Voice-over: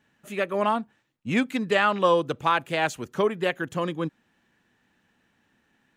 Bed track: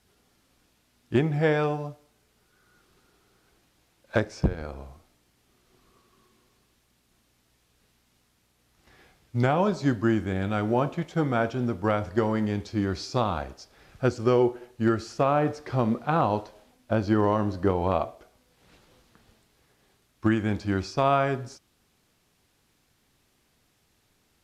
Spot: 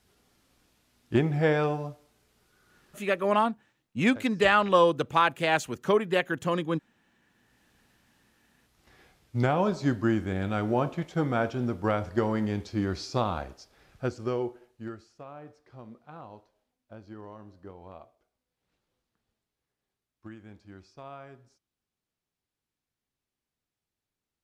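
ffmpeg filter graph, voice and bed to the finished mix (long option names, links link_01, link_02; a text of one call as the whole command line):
ffmpeg -i stem1.wav -i stem2.wav -filter_complex "[0:a]adelay=2700,volume=0dB[link_01];[1:a]volume=18dB,afade=type=out:start_time=2.98:duration=0.4:silence=0.1,afade=type=in:start_time=7.2:duration=0.46:silence=0.112202,afade=type=out:start_time=13.2:duration=1.91:silence=0.1[link_02];[link_01][link_02]amix=inputs=2:normalize=0" out.wav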